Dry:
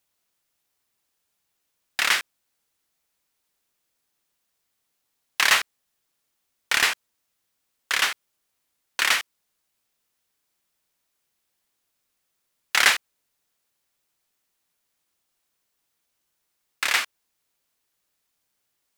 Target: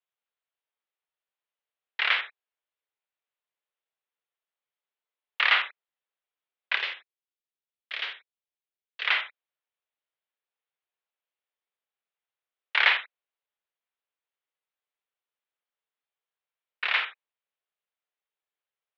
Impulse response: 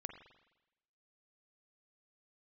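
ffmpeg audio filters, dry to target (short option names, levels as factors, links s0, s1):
-filter_complex "[0:a]agate=range=0.316:threshold=0.0398:ratio=16:detection=peak,asettb=1/sr,asplit=3[s0][s1][s2];[s0]atrim=end=6.764[s3];[s1]atrim=start=6.76:end=9.07,asetpts=PTS-STARTPTS,afade=t=in:d=0.004:c=qsin,afade=t=out:st=2.306:d=0.004:c=qsin,equalizer=f=960:w=0.4:g=-12[s4];[s2]atrim=start=9.066[s5];[s3][s4]acrossfade=d=0.004:c1=hsin:c2=qsin[s6];[s6][s5]acrossfade=d=0.004:c1=qsin:c2=hsin[s7];[1:a]atrim=start_sample=2205,afade=t=out:st=0.14:d=0.01,atrim=end_sample=6615[s8];[s7][s8]afir=irnorm=-1:irlink=0,highpass=f=250:t=q:w=0.5412,highpass=f=250:t=q:w=1.307,lowpass=f=3500:t=q:w=0.5176,lowpass=f=3500:t=q:w=0.7071,lowpass=f=3500:t=q:w=1.932,afreqshift=140,volume=1.26"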